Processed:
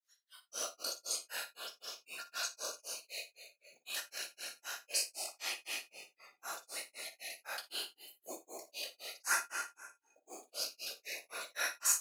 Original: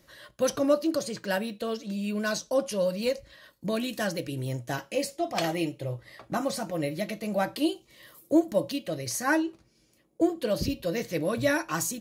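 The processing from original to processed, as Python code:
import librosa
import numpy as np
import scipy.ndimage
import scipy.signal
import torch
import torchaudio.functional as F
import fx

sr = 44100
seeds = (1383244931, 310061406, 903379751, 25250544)

p1 = fx.spec_trails(x, sr, decay_s=1.5)
p2 = fx.whisperise(p1, sr, seeds[0])
p3 = fx.granulator(p2, sr, seeds[1], grain_ms=208.0, per_s=3.9, spray_ms=100.0, spread_st=0)
p4 = fx.quant_companded(p3, sr, bits=8)
p5 = fx.weighting(p4, sr, curve='A')
p6 = fx.noise_reduce_blind(p5, sr, reduce_db=18)
p7 = np.diff(p6, prepend=0.0)
p8 = fx.small_body(p7, sr, hz=(1400.0, 2500.0), ring_ms=100, db=11)
p9 = p8 + fx.room_early_taps(p8, sr, ms=(45, 57), db=(-16.5, -15.0), dry=0)
y = p9 * librosa.db_to_amplitude(1.0)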